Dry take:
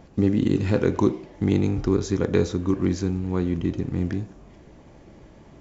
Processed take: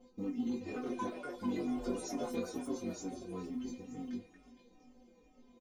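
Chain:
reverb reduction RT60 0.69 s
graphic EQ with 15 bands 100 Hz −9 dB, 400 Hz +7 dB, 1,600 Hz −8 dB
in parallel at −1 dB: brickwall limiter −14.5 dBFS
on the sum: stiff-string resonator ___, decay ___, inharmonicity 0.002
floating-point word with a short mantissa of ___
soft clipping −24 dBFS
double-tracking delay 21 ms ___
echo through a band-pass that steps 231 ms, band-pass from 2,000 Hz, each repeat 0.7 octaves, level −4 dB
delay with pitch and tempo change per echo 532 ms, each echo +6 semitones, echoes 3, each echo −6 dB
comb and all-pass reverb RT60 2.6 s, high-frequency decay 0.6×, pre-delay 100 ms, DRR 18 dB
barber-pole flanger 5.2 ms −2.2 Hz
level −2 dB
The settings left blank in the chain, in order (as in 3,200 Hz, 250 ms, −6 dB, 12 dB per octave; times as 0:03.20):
250 Hz, 0.27 s, 6 bits, −3 dB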